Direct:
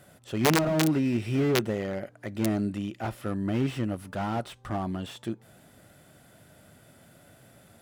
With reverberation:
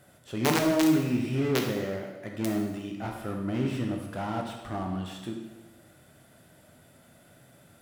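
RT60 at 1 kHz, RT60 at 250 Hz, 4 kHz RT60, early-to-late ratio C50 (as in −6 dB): 1.1 s, 1.1 s, 1.0 s, 3.5 dB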